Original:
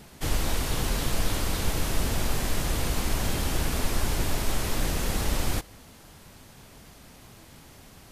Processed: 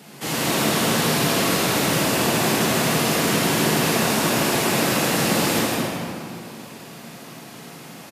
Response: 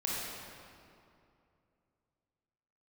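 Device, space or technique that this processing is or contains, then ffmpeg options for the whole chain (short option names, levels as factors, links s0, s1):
stadium PA: -filter_complex "[0:a]highpass=f=150:w=0.5412,highpass=f=150:w=1.3066,equalizer=f=2700:t=o:w=0.21:g=3,aecho=1:1:160.3|207:0.562|0.316[s0];[1:a]atrim=start_sample=2205[s1];[s0][s1]afir=irnorm=-1:irlink=0,volume=1.68"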